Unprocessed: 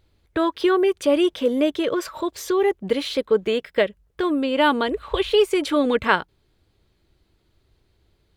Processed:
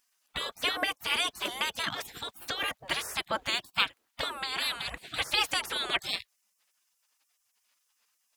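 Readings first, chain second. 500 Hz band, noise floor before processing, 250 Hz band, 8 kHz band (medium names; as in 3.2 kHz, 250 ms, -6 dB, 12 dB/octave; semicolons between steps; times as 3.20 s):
-22.5 dB, -66 dBFS, -24.5 dB, 0.0 dB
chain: high-pass 150 Hz 6 dB/octave; spectral gate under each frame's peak -25 dB weak; trim +8.5 dB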